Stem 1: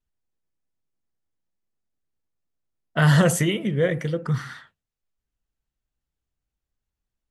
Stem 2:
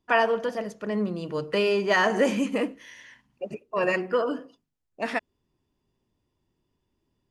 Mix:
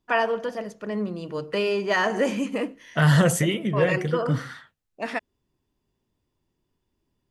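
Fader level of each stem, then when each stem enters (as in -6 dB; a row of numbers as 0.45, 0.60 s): -1.0, -1.0 dB; 0.00, 0.00 s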